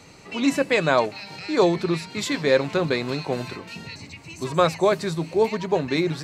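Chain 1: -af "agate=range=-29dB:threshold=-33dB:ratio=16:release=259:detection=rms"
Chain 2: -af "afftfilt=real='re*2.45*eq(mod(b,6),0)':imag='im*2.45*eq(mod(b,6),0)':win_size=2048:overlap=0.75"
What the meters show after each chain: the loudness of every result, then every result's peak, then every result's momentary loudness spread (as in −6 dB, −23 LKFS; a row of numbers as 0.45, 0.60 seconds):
−23.0, −25.0 LKFS; −5.0, −3.0 dBFS; 13, 17 LU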